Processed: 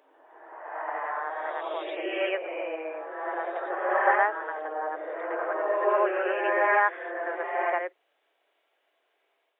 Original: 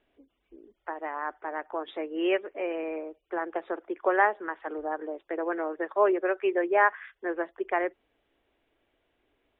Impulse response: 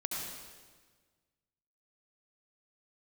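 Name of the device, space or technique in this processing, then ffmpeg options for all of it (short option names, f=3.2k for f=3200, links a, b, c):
ghost voice: -filter_complex "[0:a]areverse[a];[1:a]atrim=start_sample=2205[b];[a][b]afir=irnorm=-1:irlink=0,areverse,highpass=f=480:w=0.5412,highpass=f=480:w=1.3066"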